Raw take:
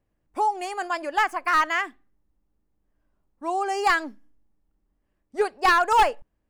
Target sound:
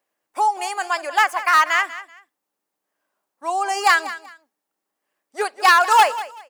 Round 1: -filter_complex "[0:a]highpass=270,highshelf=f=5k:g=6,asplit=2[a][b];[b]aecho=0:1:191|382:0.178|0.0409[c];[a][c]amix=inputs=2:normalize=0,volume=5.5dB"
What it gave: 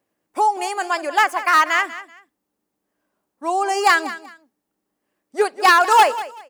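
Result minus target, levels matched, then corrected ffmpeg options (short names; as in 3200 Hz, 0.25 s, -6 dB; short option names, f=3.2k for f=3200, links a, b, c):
250 Hz band +8.5 dB
-filter_complex "[0:a]highpass=630,highshelf=f=5k:g=6,asplit=2[a][b];[b]aecho=0:1:191|382:0.178|0.0409[c];[a][c]amix=inputs=2:normalize=0,volume=5.5dB"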